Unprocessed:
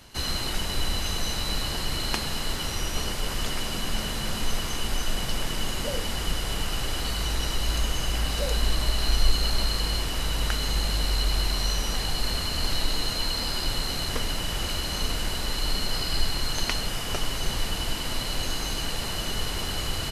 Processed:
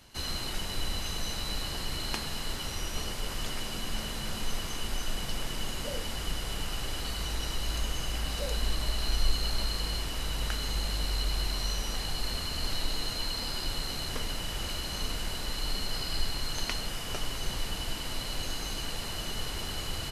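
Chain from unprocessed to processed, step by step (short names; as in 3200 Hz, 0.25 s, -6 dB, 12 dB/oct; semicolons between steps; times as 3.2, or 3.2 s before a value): de-hum 58.87 Hz, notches 35; gain -5.5 dB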